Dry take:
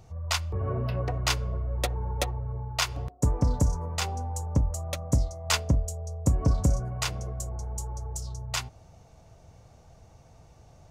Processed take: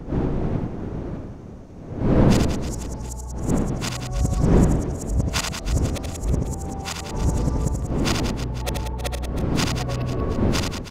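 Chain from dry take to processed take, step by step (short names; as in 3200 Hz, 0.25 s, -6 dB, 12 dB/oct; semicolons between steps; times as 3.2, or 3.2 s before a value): whole clip reversed; wind noise 270 Hz -27 dBFS; reverse bouncing-ball echo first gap 80 ms, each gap 1.3×, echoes 5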